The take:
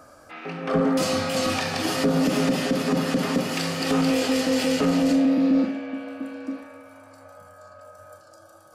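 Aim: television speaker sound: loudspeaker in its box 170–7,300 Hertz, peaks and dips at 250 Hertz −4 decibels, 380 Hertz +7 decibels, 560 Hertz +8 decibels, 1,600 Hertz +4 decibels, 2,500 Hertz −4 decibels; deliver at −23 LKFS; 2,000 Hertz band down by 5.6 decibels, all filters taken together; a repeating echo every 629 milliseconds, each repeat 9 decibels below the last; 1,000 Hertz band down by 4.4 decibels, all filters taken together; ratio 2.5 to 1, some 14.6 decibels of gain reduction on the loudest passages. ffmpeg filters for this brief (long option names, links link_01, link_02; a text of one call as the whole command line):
ffmpeg -i in.wav -af "equalizer=frequency=1000:width_type=o:gain=-6.5,equalizer=frequency=2000:width_type=o:gain=-6,acompressor=threshold=-41dB:ratio=2.5,highpass=frequency=170:width=0.5412,highpass=frequency=170:width=1.3066,equalizer=frequency=250:width_type=q:width=4:gain=-4,equalizer=frequency=380:width_type=q:width=4:gain=7,equalizer=frequency=560:width_type=q:width=4:gain=8,equalizer=frequency=1600:width_type=q:width=4:gain=4,equalizer=frequency=2500:width_type=q:width=4:gain=-4,lowpass=frequency=7300:width=0.5412,lowpass=frequency=7300:width=1.3066,aecho=1:1:629|1258|1887|2516:0.355|0.124|0.0435|0.0152,volume=13.5dB" out.wav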